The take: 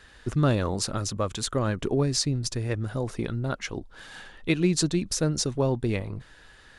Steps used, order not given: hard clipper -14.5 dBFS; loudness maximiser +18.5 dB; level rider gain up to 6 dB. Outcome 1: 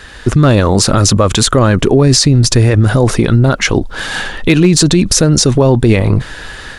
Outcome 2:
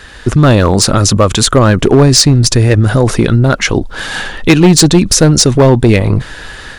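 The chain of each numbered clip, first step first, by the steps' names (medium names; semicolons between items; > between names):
hard clipper > level rider > loudness maximiser; level rider > hard clipper > loudness maximiser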